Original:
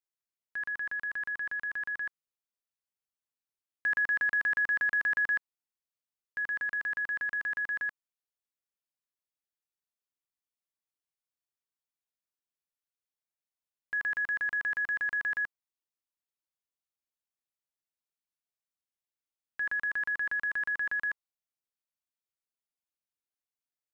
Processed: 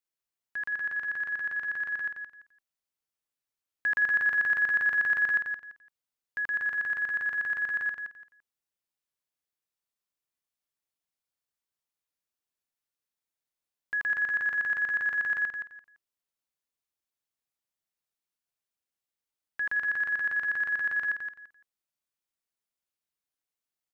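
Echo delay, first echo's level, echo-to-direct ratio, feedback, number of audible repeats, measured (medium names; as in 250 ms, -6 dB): 170 ms, -6.5 dB, -6.5 dB, 23%, 3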